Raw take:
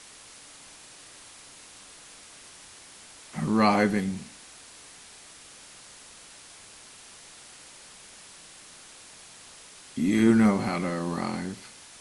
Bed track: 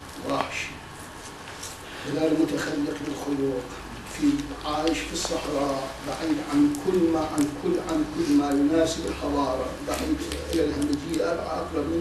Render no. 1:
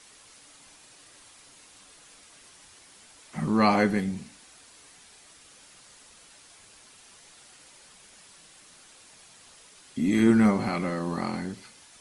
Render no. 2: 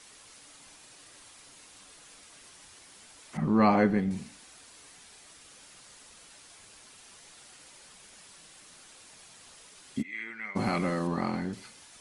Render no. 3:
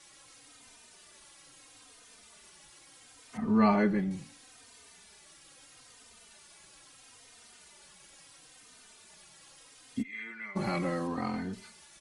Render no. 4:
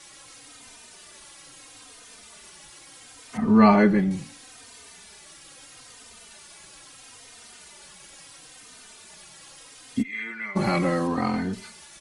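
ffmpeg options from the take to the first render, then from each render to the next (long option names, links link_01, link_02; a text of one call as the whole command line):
ffmpeg -i in.wav -af "afftdn=noise_reduction=6:noise_floor=-49" out.wav
ffmpeg -i in.wav -filter_complex "[0:a]asettb=1/sr,asplit=3[link_01][link_02][link_03];[link_01]atrim=end=3.374[link_04];[link_02]atrim=start=3.37:end=4.11,asetpts=PTS-STARTPTS,afade=type=in:duration=0.004:curve=qsin,afade=type=out:start_time=0.736:duration=0.004:curve=qsin,lowpass=frequency=1400:poles=1[link_05];[link_03]atrim=start=4.106[link_06];[link_04][link_05]acrossfade=duration=0.004:curve1=hsin:curve2=qsin[link_07];[link_07][link_06]acrossfade=duration=0.004:curve1=qsin:curve2=hsin,asplit=3[link_08][link_09][link_10];[link_08]afade=type=out:start_time=10.01:duration=0.02[link_11];[link_09]bandpass=frequency=2100:width_type=q:width=5.3,afade=type=in:start_time=10.01:duration=0.02,afade=type=out:start_time=10.55:duration=0.02[link_12];[link_10]afade=type=in:start_time=10.55:duration=0.02[link_13];[link_11][link_12][link_13]amix=inputs=3:normalize=0,asettb=1/sr,asplit=3[link_14][link_15][link_16];[link_14]atrim=end=11.074[link_17];[link_15]atrim=start=11.07:end=11.53,asetpts=PTS-STARTPTS,afade=type=in:duration=0.004:curve=qsin,afade=type=out:start_time=0.456:duration=0.004:curve=qsin,aemphasis=mode=reproduction:type=50kf[link_18];[link_16]atrim=start=11.526[link_19];[link_17][link_18]acrossfade=duration=0.004:curve1=hsin:curve2=qsin[link_20];[link_20][link_19]acrossfade=duration=0.004:curve1=qsin:curve2=hsin" out.wav
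ffmpeg -i in.wav -filter_complex "[0:a]asplit=2[link_01][link_02];[link_02]adelay=3.1,afreqshift=-0.75[link_03];[link_01][link_03]amix=inputs=2:normalize=1" out.wav
ffmpeg -i in.wav -af "volume=8.5dB" out.wav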